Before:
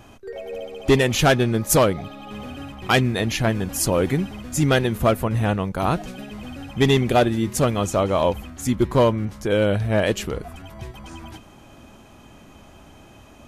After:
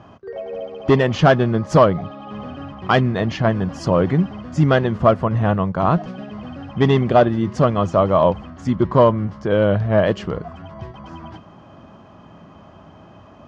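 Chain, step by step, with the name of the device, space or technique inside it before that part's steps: guitar cabinet (speaker cabinet 76–4500 Hz, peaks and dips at 97 Hz +4 dB, 170 Hz +8 dB, 630 Hz +5 dB, 1100 Hz +7 dB, 2400 Hz -8 dB, 3800 Hz -9 dB); gain +1 dB

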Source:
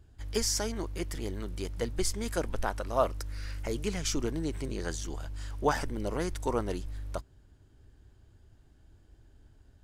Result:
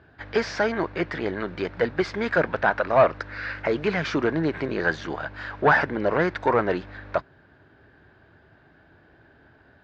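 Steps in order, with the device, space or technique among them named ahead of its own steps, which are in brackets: overdrive pedal into a guitar cabinet (overdrive pedal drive 20 dB, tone 2800 Hz, clips at -11.5 dBFS; speaker cabinet 78–3700 Hz, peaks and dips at 160 Hz +6 dB, 640 Hz +3 dB, 1600 Hz +7 dB, 3100 Hz -7 dB); gain +2.5 dB

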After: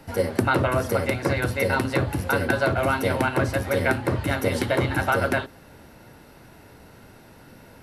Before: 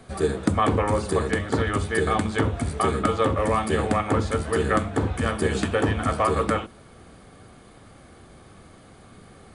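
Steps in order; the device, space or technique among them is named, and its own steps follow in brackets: nightcore (varispeed +22%)

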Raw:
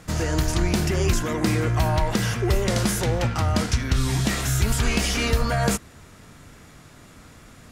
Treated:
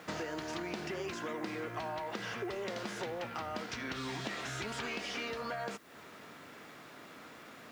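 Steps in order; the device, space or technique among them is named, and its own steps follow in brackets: baby monitor (BPF 310–3900 Hz; compressor 10:1, threshold -36 dBFS, peak gain reduction 16 dB; white noise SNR 27 dB)

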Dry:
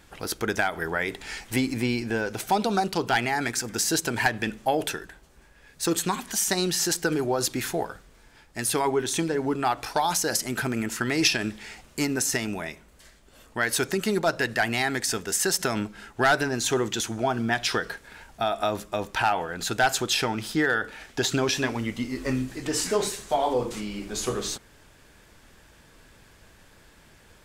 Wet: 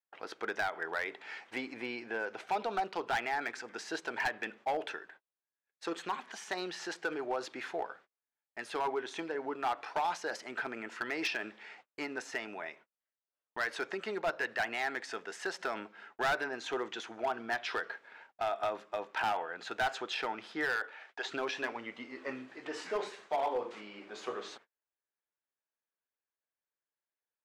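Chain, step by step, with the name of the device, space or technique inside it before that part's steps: 20.71–21.24 HPF 280 Hz -> 590 Hz 12 dB/oct; walkie-talkie (BPF 500–2500 Hz; hard clip -21 dBFS, distortion -13 dB; gate -50 dBFS, range -36 dB); gain -5.5 dB

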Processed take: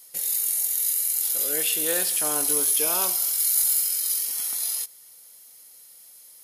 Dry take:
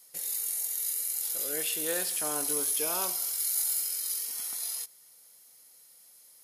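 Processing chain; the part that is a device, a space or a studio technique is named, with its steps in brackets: presence and air boost (bell 3100 Hz +2.5 dB; high shelf 11000 Hz +6 dB); gain +4.5 dB

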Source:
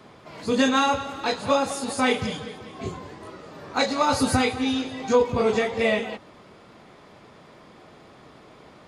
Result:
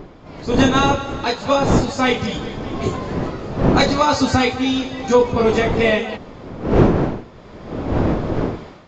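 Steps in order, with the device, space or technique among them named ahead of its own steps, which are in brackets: smartphone video outdoors (wind noise 390 Hz -26 dBFS; AGC gain up to 12 dB; gain -1 dB; AAC 64 kbps 16000 Hz)

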